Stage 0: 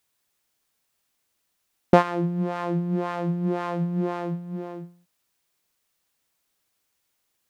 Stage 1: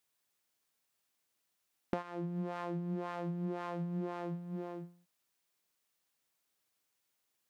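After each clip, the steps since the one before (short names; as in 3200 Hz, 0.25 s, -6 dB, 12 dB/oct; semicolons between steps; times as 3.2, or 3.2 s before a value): low shelf 67 Hz -11 dB; compressor 5:1, threshold -28 dBFS, peak gain reduction 16.5 dB; gain -6.5 dB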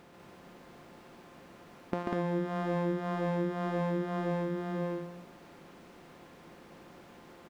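per-bin compression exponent 0.4; on a send: loudspeakers at several distances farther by 48 m -3 dB, 67 m -2 dB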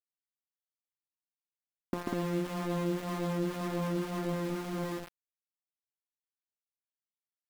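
low shelf 250 Hz +6 dB; small resonant body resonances 280/1100 Hz, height 7 dB, ringing for 20 ms; sample gate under -30.5 dBFS; gain -6 dB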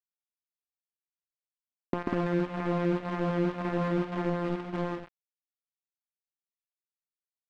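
gate with hold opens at -30 dBFS; in parallel at -4.5 dB: bit-crush 5-bit; on the sum: LPF 2600 Hz 12 dB/oct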